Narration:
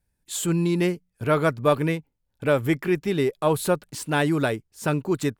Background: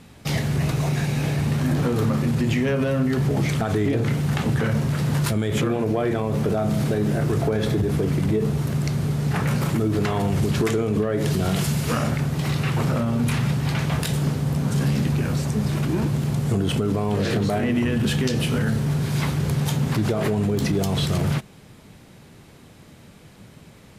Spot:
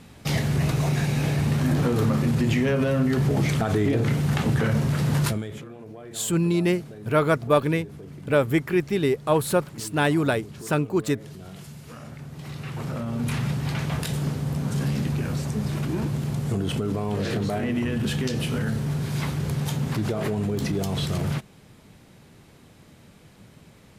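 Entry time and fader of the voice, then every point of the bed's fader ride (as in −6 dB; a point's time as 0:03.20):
5.85 s, +0.5 dB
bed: 0:05.27 −0.5 dB
0:05.64 −19 dB
0:11.93 −19 dB
0:13.34 −4 dB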